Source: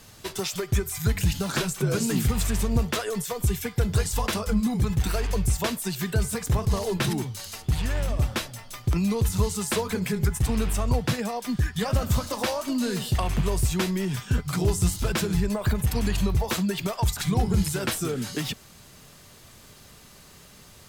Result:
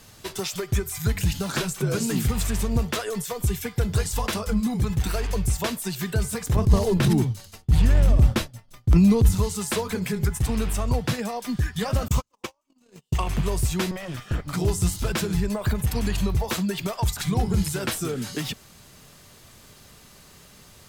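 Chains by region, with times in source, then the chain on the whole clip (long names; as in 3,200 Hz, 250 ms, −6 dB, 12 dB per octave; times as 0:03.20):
0:06.56–0:09.35: downward expander −31 dBFS + low-shelf EQ 380 Hz +11 dB + transient designer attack −8 dB, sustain +1 dB
0:12.08–0:13.27: EQ curve with evenly spaced ripples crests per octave 0.72, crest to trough 7 dB + noise gate −24 dBFS, range −46 dB
0:13.91–0:14.54: lower of the sound and its delayed copy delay 1.6 ms + bass and treble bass −2 dB, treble −7 dB
whole clip: no processing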